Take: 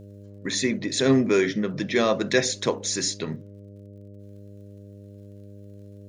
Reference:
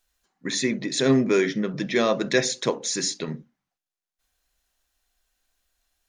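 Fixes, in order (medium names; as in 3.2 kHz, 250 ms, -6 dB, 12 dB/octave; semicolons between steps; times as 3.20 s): de-click; de-hum 100.8 Hz, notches 6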